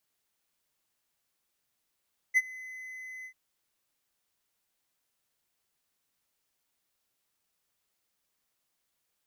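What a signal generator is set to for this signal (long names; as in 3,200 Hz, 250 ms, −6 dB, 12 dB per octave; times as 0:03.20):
note with an ADSR envelope triangle 2,030 Hz, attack 32 ms, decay 38 ms, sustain −22.5 dB, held 0.91 s, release 81 ms −16 dBFS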